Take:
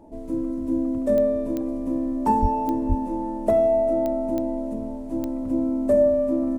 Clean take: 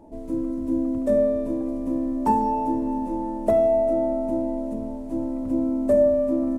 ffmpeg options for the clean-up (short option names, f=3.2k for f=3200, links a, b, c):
-filter_complex "[0:a]adeclick=t=4,asplit=3[a][b][c];[a]afade=t=out:st=2.41:d=0.02[d];[b]highpass=f=140:w=0.5412,highpass=f=140:w=1.3066,afade=t=in:st=2.41:d=0.02,afade=t=out:st=2.53:d=0.02[e];[c]afade=t=in:st=2.53:d=0.02[f];[d][e][f]amix=inputs=3:normalize=0,asplit=3[g][h][i];[g]afade=t=out:st=2.88:d=0.02[j];[h]highpass=f=140:w=0.5412,highpass=f=140:w=1.3066,afade=t=in:st=2.88:d=0.02,afade=t=out:st=3:d=0.02[k];[i]afade=t=in:st=3:d=0.02[l];[j][k][l]amix=inputs=3:normalize=0"